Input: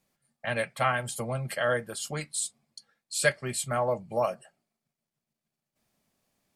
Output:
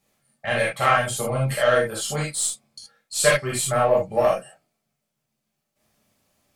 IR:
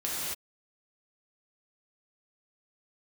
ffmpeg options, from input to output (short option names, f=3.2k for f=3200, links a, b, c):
-filter_complex "[0:a]asoftclip=type=tanh:threshold=-15dB,aeval=exprs='0.178*(cos(1*acos(clip(val(0)/0.178,-1,1)))-cos(1*PI/2))+0.0891*(cos(2*acos(clip(val(0)/0.178,-1,1)))-cos(2*PI/2))+0.0282*(cos(4*acos(clip(val(0)/0.178,-1,1)))-cos(4*PI/2))+0.00158*(cos(8*acos(clip(val(0)/0.178,-1,1)))-cos(8*PI/2))':c=same[a];[1:a]atrim=start_sample=2205,atrim=end_sample=6174,asetrate=74970,aresample=44100[b];[a][b]afir=irnorm=-1:irlink=0,volume=8dB"